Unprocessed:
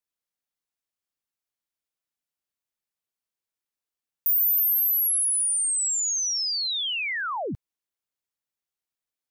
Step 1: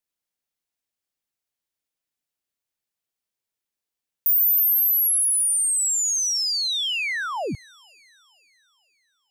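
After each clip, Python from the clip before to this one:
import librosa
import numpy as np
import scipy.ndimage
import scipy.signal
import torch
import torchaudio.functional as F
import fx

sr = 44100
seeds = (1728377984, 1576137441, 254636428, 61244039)

y = fx.peak_eq(x, sr, hz=1200.0, db=-3.0, octaves=0.77)
y = fx.echo_wet_highpass(y, sr, ms=474, feedback_pct=45, hz=1700.0, wet_db=-22)
y = F.gain(torch.from_numpy(y), 3.0).numpy()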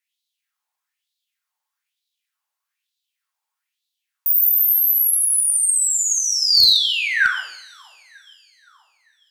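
y = fx.filter_lfo_highpass(x, sr, shape='sine', hz=1.1, low_hz=850.0, high_hz=3900.0, q=5.9)
y = fx.rev_double_slope(y, sr, seeds[0], early_s=0.64, late_s=1.8, knee_db=-28, drr_db=0.0)
y = fx.clip_asym(y, sr, top_db=-8.0, bottom_db=-6.0)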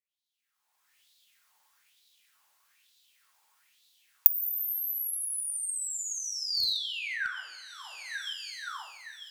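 y = fx.recorder_agc(x, sr, target_db=-11.5, rise_db_per_s=31.0, max_gain_db=30)
y = F.gain(torch.from_numpy(y), -16.0).numpy()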